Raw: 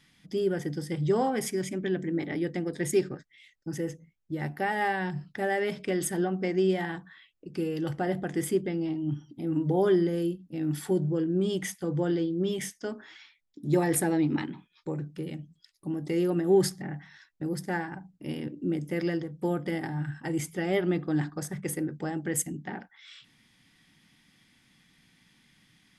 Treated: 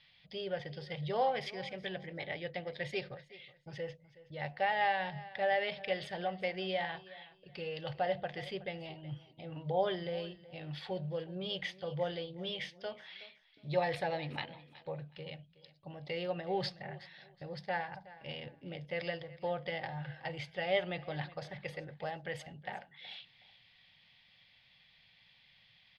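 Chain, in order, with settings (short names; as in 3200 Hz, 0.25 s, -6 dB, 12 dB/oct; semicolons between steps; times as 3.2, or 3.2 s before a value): EQ curve 120 Hz 0 dB, 320 Hz -19 dB, 560 Hz +8 dB, 1400 Hz -2 dB, 2600 Hz +9 dB, 4400 Hz +8 dB, 7100 Hz -23 dB, 11000 Hz -29 dB; on a send: feedback echo 0.37 s, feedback 25%, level -18.5 dB; on the sum: gain -6 dB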